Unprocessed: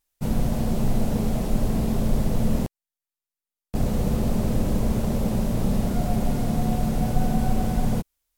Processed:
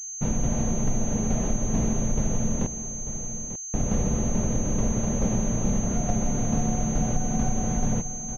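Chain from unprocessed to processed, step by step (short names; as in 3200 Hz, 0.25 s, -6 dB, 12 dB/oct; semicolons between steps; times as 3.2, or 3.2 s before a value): tremolo saw down 2.3 Hz, depth 50%; on a send: echo 0.892 s -15 dB; on the sum: compressor, threshold -24 dBFS, peak gain reduction 8.5 dB; pulse-width modulation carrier 6300 Hz; gain +4 dB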